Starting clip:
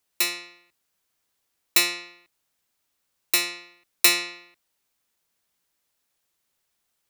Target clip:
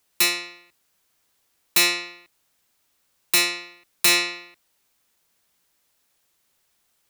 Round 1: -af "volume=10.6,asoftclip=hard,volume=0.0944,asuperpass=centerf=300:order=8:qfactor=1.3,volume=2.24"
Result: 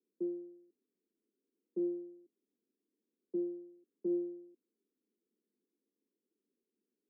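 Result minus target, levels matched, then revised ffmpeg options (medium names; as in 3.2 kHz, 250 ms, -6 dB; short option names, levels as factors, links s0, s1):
250 Hz band +19.0 dB
-af "volume=10.6,asoftclip=hard,volume=0.0944,volume=2.24"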